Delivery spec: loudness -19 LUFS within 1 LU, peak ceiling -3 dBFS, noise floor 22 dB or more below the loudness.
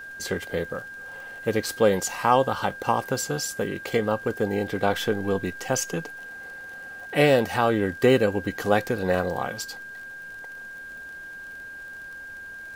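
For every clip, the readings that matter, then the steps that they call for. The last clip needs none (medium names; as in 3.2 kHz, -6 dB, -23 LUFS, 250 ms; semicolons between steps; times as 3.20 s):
tick rate 41 per s; steady tone 1.6 kHz; tone level -37 dBFS; loudness -25.0 LUFS; peak level -4.5 dBFS; loudness target -19.0 LUFS
-> de-click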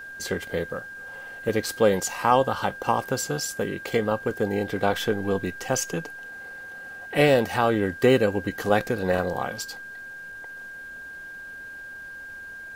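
tick rate 0.55 per s; steady tone 1.6 kHz; tone level -37 dBFS
-> band-stop 1.6 kHz, Q 30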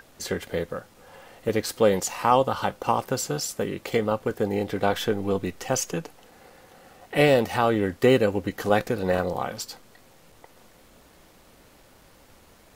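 steady tone not found; loudness -25.0 LUFS; peak level -4.5 dBFS; loudness target -19.0 LUFS
-> trim +6 dB; peak limiter -3 dBFS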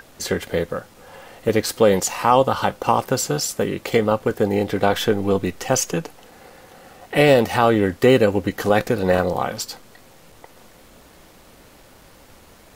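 loudness -19.5 LUFS; peak level -3.0 dBFS; noise floor -49 dBFS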